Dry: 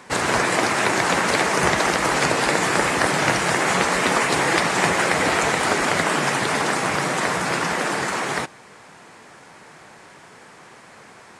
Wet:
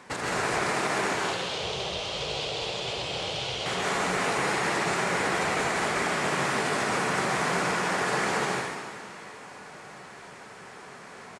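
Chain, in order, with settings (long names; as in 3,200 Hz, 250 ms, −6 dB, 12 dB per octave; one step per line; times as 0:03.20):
high-shelf EQ 9,600 Hz −5.5 dB
echo with shifted repeats 303 ms, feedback 63%, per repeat +34 Hz, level −20 dB
downward compressor, threshold −22 dBFS, peak gain reduction 8 dB
0:01.14–0:03.66: drawn EQ curve 110 Hz 0 dB, 250 Hz −17 dB, 510 Hz −4 dB, 1,800 Hz −19 dB, 3,200 Hz +7 dB, 11,000 Hz −18 dB
brickwall limiter −17.5 dBFS, peak gain reduction 6.5 dB
dense smooth reverb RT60 1.4 s, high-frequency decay 0.95×, pre-delay 120 ms, DRR −4 dB
level −5 dB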